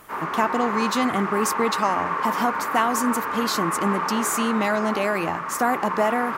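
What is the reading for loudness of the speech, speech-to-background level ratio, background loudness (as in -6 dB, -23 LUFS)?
-24.5 LUFS, 2.0 dB, -26.5 LUFS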